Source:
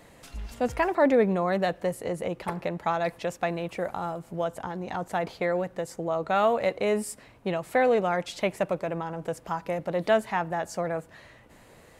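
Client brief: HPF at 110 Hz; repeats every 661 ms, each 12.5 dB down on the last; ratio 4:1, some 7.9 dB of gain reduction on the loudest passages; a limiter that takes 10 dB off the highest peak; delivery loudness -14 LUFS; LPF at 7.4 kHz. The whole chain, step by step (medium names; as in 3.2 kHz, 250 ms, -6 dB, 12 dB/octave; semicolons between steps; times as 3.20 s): high-pass 110 Hz; low-pass 7.4 kHz; compression 4:1, threshold -26 dBFS; peak limiter -25 dBFS; feedback delay 661 ms, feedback 24%, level -12.5 dB; trim +21.5 dB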